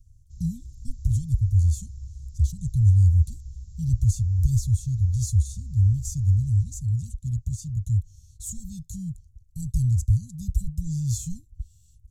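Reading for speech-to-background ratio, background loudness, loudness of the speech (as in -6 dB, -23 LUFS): 17.0 dB, -42.0 LUFS, -25.0 LUFS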